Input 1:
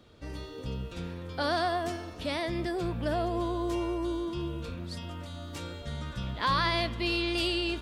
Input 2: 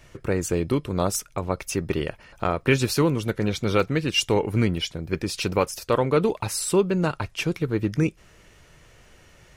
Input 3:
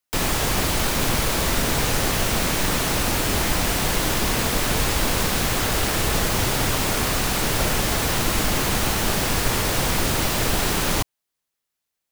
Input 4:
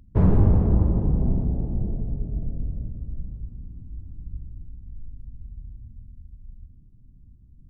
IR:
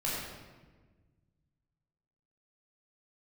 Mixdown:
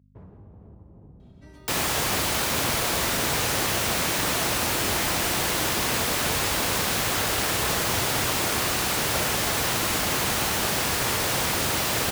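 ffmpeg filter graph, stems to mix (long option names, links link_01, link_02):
-filter_complex "[0:a]aecho=1:1:3.1:0.65,adelay=1200,volume=-5dB[link_01];[2:a]adelay=1550,volume=-1dB[link_02];[3:a]volume=-16dB[link_03];[link_01][link_03]amix=inputs=2:normalize=0,aeval=exprs='val(0)+0.00355*(sin(2*PI*50*n/s)+sin(2*PI*2*50*n/s)/2+sin(2*PI*3*50*n/s)/3+sin(2*PI*4*50*n/s)/4+sin(2*PI*5*50*n/s)/5)':channel_layout=same,acompressor=threshold=-37dB:ratio=6,volume=0dB[link_04];[link_02][link_04]amix=inputs=2:normalize=0,highpass=91,equalizer=frequency=200:width=0.58:gain=-5"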